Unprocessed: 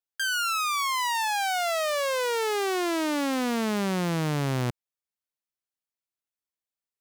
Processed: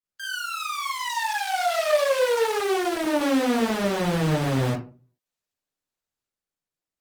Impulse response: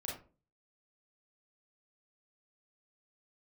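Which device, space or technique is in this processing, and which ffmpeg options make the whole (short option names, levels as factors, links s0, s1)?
far-field microphone of a smart speaker: -filter_complex "[1:a]atrim=start_sample=2205[s0];[0:a][s0]afir=irnorm=-1:irlink=0,highpass=150,dynaudnorm=f=210:g=13:m=2.11,volume=0.75" -ar 48000 -c:a libopus -b:a 20k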